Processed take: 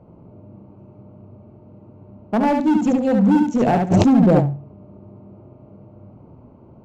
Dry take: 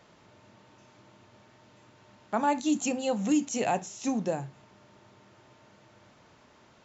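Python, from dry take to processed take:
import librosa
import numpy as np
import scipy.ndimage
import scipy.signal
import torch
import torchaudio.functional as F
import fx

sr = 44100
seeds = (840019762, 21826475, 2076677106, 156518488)

p1 = fx.wiener(x, sr, points=25)
p2 = fx.lowpass(p1, sr, hz=1200.0, slope=6)
p3 = fx.low_shelf(p2, sr, hz=380.0, db=11.5)
p4 = fx.rider(p3, sr, range_db=10, speed_s=0.5)
p5 = p3 + (p4 * 10.0 ** (-0.5 / 20.0))
p6 = np.clip(10.0 ** (14.5 / 20.0) * p5, -1.0, 1.0) / 10.0 ** (14.5 / 20.0)
p7 = p6 + fx.echo_feedback(p6, sr, ms=71, feedback_pct=19, wet_db=-4.5, dry=0)
p8 = fx.env_flatten(p7, sr, amount_pct=100, at=(3.9, 4.39), fade=0.02)
y = p8 * 10.0 ** (1.5 / 20.0)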